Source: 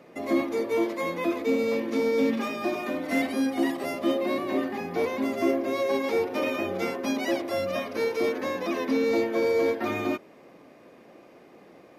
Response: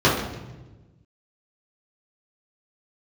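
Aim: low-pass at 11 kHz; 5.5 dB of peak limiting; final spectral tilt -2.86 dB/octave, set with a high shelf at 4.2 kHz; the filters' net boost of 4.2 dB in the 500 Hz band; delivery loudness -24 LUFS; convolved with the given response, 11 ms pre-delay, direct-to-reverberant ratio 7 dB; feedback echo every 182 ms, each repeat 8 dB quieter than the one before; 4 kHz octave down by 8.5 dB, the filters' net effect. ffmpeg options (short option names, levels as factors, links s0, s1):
-filter_complex "[0:a]lowpass=11000,equalizer=f=500:t=o:g=5,equalizer=f=4000:t=o:g=-7,highshelf=f=4200:g=-7.5,alimiter=limit=0.15:level=0:latency=1,aecho=1:1:182|364|546|728|910:0.398|0.159|0.0637|0.0255|0.0102,asplit=2[s0][s1];[1:a]atrim=start_sample=2205,adelay=11[s2];[s1][s2]afir=irnorm=-1:irlink=0,volume=0.0355[s3];[s0][s3]amix=inputs=2:normalize=0,volume=0.891"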